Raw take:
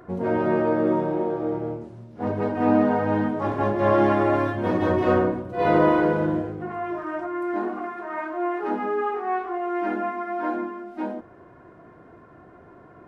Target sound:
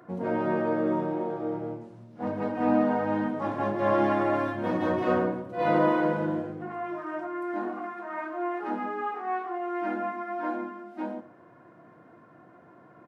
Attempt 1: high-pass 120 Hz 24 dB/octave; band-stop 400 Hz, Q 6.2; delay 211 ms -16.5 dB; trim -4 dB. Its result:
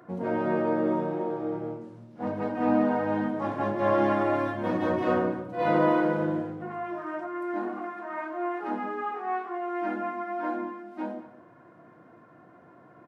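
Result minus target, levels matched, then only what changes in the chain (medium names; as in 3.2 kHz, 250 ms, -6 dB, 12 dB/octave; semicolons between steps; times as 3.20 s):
echo 98 ms late
change: delay 113 ms -16.5 dB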